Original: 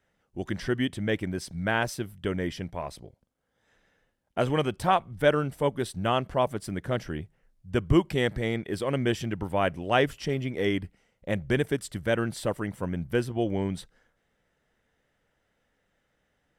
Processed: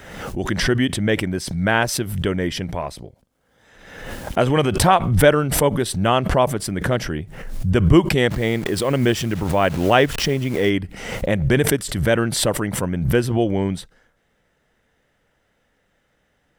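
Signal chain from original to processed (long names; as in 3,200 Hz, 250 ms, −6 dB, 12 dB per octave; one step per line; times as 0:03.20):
0:08.30–0:10.70: hold until the input has moved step −45 dBFS
background raised ahead of every attack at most 54 dB per second
level +7.5 dB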